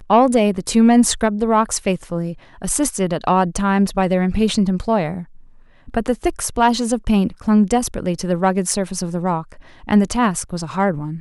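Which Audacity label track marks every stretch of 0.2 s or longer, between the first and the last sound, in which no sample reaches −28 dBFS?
2.330000	2.620000	silence
5.230000	5.880000	silence
9.530000	9.890000	silence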